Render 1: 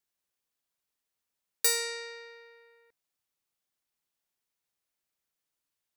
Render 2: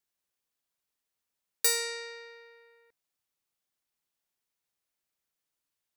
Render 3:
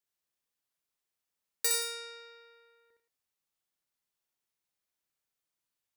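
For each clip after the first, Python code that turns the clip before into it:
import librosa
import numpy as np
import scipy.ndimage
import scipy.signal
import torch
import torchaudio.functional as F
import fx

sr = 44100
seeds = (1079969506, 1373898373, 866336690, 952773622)

y1 = x
y2 = fx.echo_multitap(y1, sr, ms=(63, 95, 173), db=(-3.0, -8.0, -14.5))
y2 = y2 * librosa.db_to_amplitude(-4.5)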